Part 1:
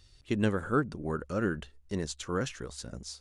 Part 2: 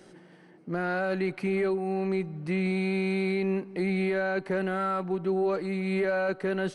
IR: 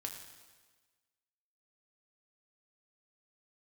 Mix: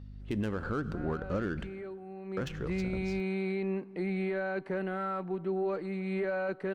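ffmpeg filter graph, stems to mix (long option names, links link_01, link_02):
-filter_complex "[0:a]adynamicsmooth=sensitivity=6.5:basefreq=1700,aeval=exprs='val(0)+0.00398*(sin(2*PI*50*n/s)+sin(2*PI*2*50*n/s)/2+sin(2*PI*3*50*n/s)/3+sin(2*PI*4*50*n/s)/4+sin(2*PI*5*50*n/s)/5)':channel_layout=same,volume=1.5dB,asplit=3[link_01][link_02][link_03];[link_01]atrim=end=1.68,asetpts=PTS-STARTPTS,afade=type=out:start_time=1.676:duration=0.004:curve=hsin[link_04];[link_02]atrim=start=1.68:end=2.37,asetpts=PTS-STARTPTS,volume=0[link_05];[link_03]atrim=start=2.37,asetpts=PTS-STARTPTS,afade=type=in:duration=0.004:curve=hsin[link_06];[link_04][link_05][link_06]concat=n=3:v=0:a=1,asplit=2[link_07][link_08];[link_08]volume=-11.5dB[link_09];[1:a]highshelf=frequency=4800:gain=-12,adelay=200,volume=-5dB,afade=type=in:start_time=2.24:duration=0.25:silence=0.316228[link_10];[2:a]atrim=start_sample=2205[link_11];[link_09][link_11]afir=irnorm=-1:irlink=0[link_12];[link_07][link_10][link_12]amix=inputs=3:normalize=0,alimiter=limit=-24dB:level=0:latency=1:release=107"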